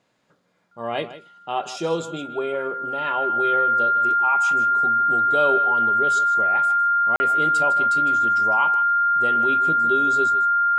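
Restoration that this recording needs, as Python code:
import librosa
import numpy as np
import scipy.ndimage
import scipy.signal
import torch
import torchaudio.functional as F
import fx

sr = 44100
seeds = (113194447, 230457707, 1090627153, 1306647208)

y = fx.notch(x, sr, hz=1400.0, q=30.0)
y = fx.fix_interpolate(y, sr, at_s=(7.16,), length_ms=40.0)
y = fx.fix_echo_inverse(y, sr, delay_ms=156, level_db=-14.0)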